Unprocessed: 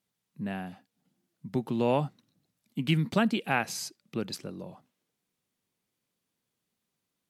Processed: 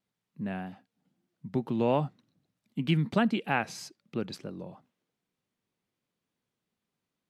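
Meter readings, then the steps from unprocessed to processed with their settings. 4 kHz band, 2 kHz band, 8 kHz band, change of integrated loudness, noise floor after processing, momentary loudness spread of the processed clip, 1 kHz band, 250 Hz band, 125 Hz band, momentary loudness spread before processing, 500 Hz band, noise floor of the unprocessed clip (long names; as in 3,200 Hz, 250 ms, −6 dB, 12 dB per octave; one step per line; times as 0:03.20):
−3.0 dB, −1.5 dB, −7.5 dB, −0.5 dB, below −85 dBFS, 16 LU, −0.5 dB, 0.0 dB, 0.0 dB, 16 LU, −0.5 dB, −84 dBFS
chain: low-pass filter 3,000 Hz 6 dB per octave
pitch vibrato 3.2 Hz 43 cents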